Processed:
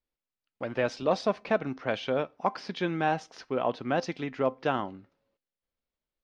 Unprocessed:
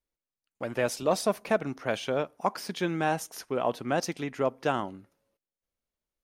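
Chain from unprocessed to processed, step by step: LPF 4800 Hz 24 dB/oct; resonator 260 Hz, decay 0.23 s, harmonics all, mix 40%; gain +3.5 dB

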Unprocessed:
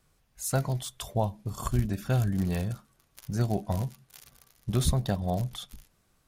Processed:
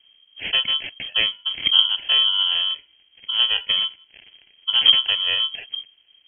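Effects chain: low shelf 73 Hz +11 dB; sample-and-hold 22×; inverted band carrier 3200 Hz; gain +4 dB

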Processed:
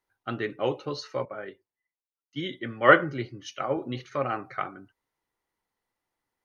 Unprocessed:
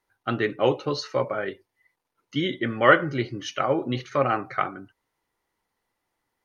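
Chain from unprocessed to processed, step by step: 1.25–3.77 three-band expander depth 70%; gain -6 dB

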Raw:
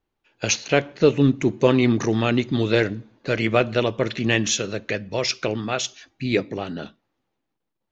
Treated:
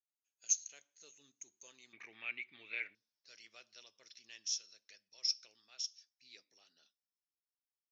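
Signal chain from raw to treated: band-pass 6500 Hz, Q 16, from 1.93 s 2300 Hz, from 2.95 s 5400 Hz; gain -2.5 dB

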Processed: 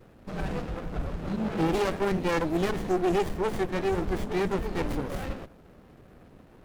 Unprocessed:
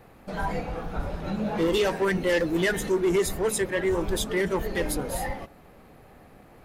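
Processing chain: vibrato 1.6 Hz 44 cents; running maximum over 33 samples

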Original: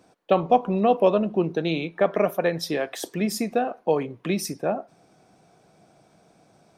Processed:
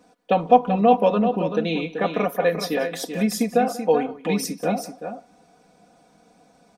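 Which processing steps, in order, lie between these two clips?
comb 4.1 ms, depth 88%; on a send: tapped delay 0.184/0.384 s -18.5/-8 dB; on the sum: gain -1 dB

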